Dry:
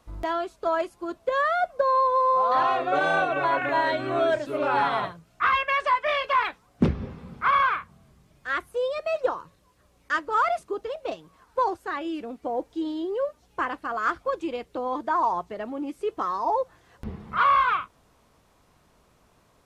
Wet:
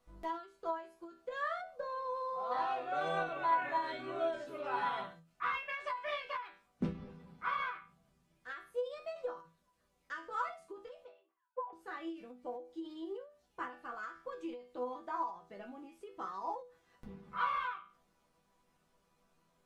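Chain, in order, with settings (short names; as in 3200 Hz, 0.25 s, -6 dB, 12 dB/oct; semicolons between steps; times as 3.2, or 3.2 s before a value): 11.08–11.73 sine-wave speech; resonator bank E3 minor, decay 0.27 s; ending taper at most 130 dB/s; gain +2.5 dB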